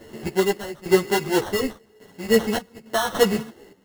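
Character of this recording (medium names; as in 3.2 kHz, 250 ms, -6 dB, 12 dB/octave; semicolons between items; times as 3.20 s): random-step tremolo 3.5 Hz, depth 90%; aliases and images of a low sample rate 2.4 kHz, jitter 0%; a shimmering, thickened sound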